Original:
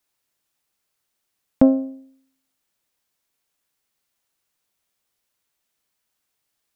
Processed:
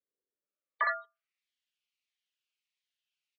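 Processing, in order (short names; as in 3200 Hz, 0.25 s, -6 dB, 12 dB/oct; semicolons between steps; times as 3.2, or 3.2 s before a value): self-modulated delay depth 0.74 ms; elliptic band-stop 240–510 Hz, stop band 40 dB; echo 0.119 s -4 dB; frequency shift +65 Hz; in parallel at -10 dB: sine folder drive 14 dB, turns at -5 dBFS; on the sum: band-pass sweep 220 Hz -> 1400 Hz, 0.6–2.97; sample leveller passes 2; spectral gate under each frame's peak -20 dB strong; speed mistake 7.5 ips tape played at 15 ips; cascading phaser falling 1.5 Hz; gain -6.5 dB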